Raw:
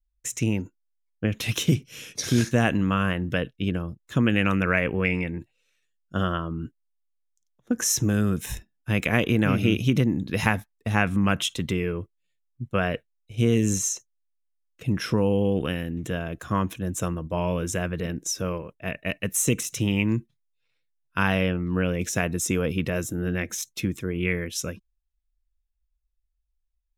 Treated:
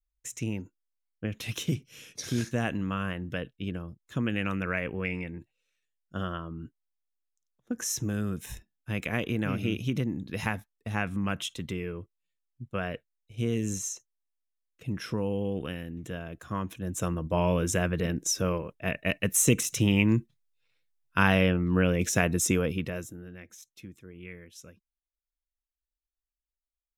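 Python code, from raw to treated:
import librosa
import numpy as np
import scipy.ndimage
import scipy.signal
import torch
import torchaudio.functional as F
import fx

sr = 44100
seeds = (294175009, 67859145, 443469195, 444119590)

y = fx.gain(x, sr, db=fx.line((16.62, -8.0), (17.29, 0.5), (22.48, 0.5), (23.03, -9.5), (23.29, -18.5)))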